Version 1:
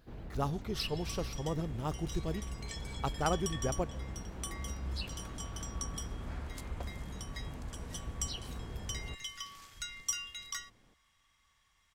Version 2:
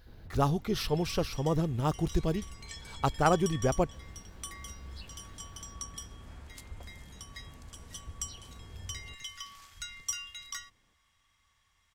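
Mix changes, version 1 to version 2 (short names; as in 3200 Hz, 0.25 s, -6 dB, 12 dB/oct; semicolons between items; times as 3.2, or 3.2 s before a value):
speech +7.0 dB; first sound -8.5 dB; master: add bell 87 Hz +6.5 dB 0.33 oct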